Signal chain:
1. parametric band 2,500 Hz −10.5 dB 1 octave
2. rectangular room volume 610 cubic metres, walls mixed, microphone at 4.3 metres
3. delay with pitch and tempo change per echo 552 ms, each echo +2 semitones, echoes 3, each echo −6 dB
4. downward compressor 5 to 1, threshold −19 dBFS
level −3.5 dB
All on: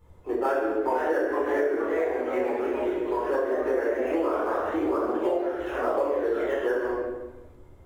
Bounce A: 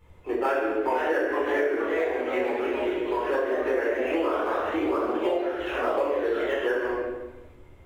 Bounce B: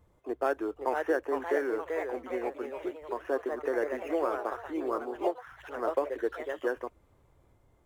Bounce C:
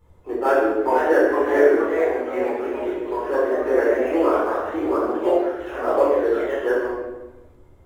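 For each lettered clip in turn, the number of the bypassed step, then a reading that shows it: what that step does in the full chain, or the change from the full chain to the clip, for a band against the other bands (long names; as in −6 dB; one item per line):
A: 1, 2 kHz band +4.0 dB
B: 2, 250 Hz band −2.0 dB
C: 4, average gain reduction 4.0 dB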